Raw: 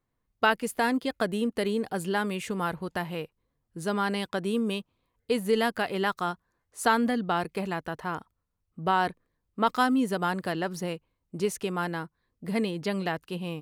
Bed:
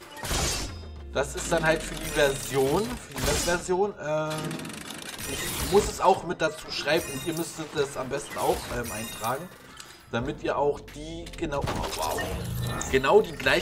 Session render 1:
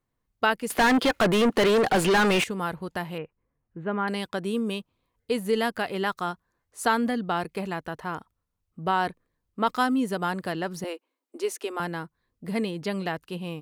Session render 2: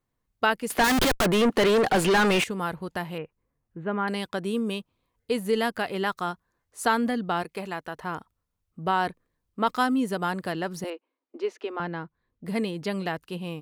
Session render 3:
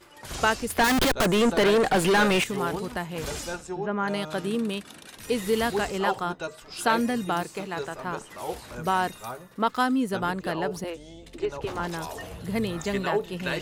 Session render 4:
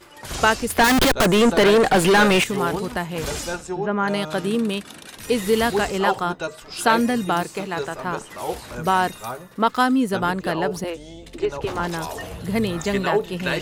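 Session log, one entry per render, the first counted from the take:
0:00.70–0:02.44: mid-hump overdrive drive 32 dB, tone 3,000 Hz, clips at −13 dBFS; 0:03.18–0:04.08: inverse Chebyshev low-pass filter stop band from 4,900 Hz; 0:10.84–0:11.80: Butterworth high-pass 250 Hz 72 dB per octave
0:00.84–0:01.26: comparator with hysteresis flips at −30.5 dBFS; 0:07.42–0:07.96: low-shelf EQ 250 Hz −8.5 dB; 0:10.90–0:12.46: high-frequency loss of the air 220 metres
mix in bed −8 dB
level +5.5 dB

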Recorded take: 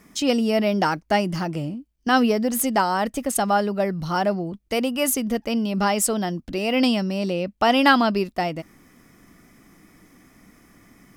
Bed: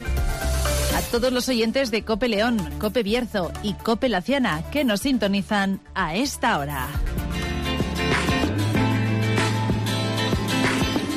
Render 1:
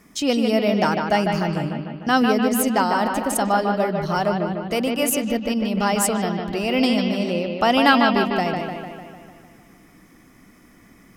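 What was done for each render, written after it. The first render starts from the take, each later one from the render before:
bucket-brigade delay 150 ms, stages 4,096, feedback 60%, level −5 dB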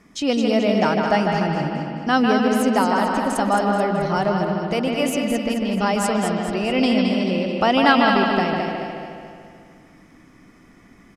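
high-frequency loss of the air 58 metres
repeating echo 216 ms, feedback 45%, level −6 dB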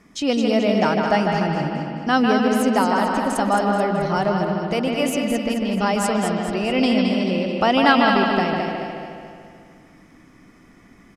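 no processing that can be heard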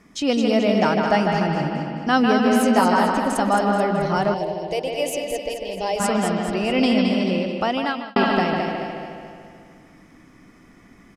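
0:02.44–0:03.12: double-tracking delay 17 ms −3 dB
0:04.34–0:06.00: phaser with its sweep stopped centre 550 Hz, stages 4
0:07.34–0:08.16: fade out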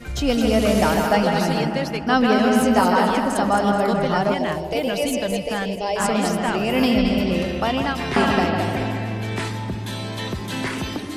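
mix in bed −5 dB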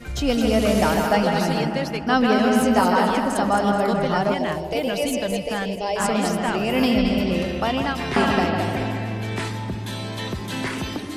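level −1 dB

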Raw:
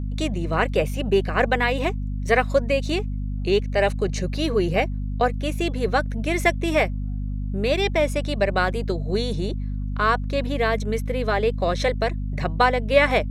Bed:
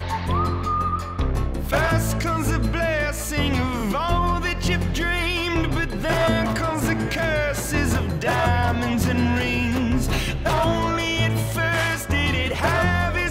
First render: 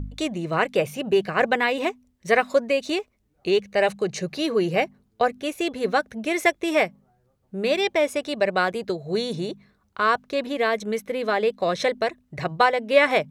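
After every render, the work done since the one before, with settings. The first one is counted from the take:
hum removal 50 Hz, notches 5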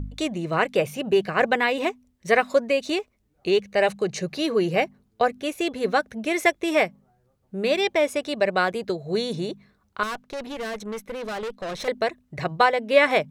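0:10.03–0:11.88: tube saturation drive 28 dB, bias 0.6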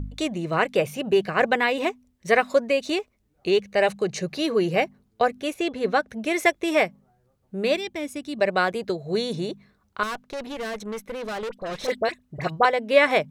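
0:05.54–0:06.09: high-shelf EQ 7,900 Hz −10.5 dB
0:07.77–0:08.39: drawn EQ curve 300 Hz 0 dB, 480 Hz −15 dB, 11,000 Hz −3 dB
0:11.49–0:12.65: all-pass dispersion highs, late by 40 ms, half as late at 1,600 Hz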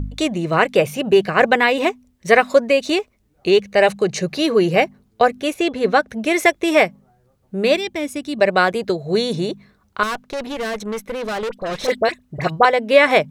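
level +6.5 dB
brickwall limiter −1 dBFS, peak gain reduction 2.5 dB

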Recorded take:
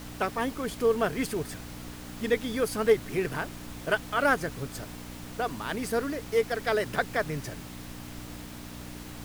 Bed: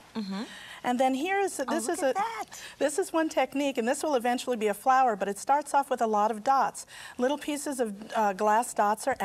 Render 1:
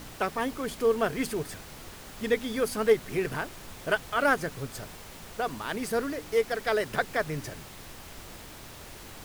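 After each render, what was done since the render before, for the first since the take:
hum removal 60 Hz, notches 5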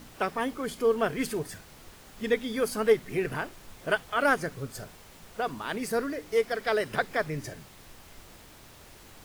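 noise reduction from a noise print 6 dB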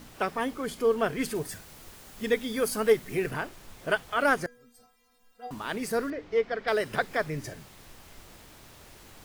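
0:01.35–0:03.31: high-shelf EQ 7,100 Hz +6.5 dB
0:04.46–0:05.51: stiff-string resonator 240 Hz, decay 0.56 s, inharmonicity 0.008
0:06.10–0:06.68: high-frequency loss of the air 190 metres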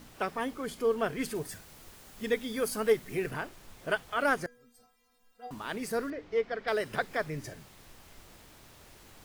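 level −3.5 dB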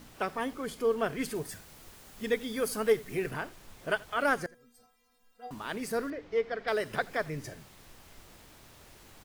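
single-tap delay 83 ms −23.5 dB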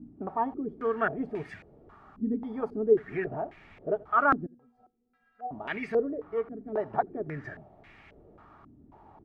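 notch comb filter 510 Hz
low-pass on a step sequencer 3.7 Hz 270–2,200 Hz

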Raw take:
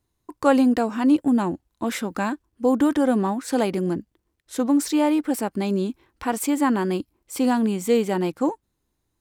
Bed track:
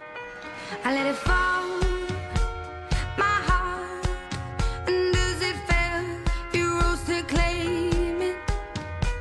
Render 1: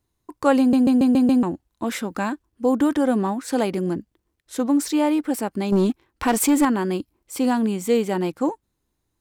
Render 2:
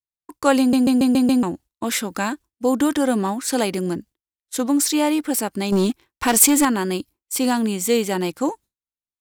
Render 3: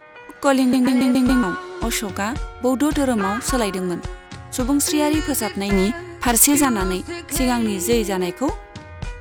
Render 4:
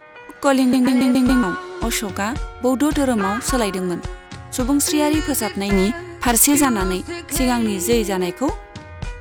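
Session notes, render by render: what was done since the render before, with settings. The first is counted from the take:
0:00.59: stutter in place 0.14 s, 6 plays; 0:05.72–0:06.65: leveller curve on the samples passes 2
downward expander −36 dBFS; high-shelf EQ 2,400 Hz +11 dB
mix in bed track −4 dB
level +1 dB; brickwall limiter −3 dBFS, peak gain reduction 3 dB

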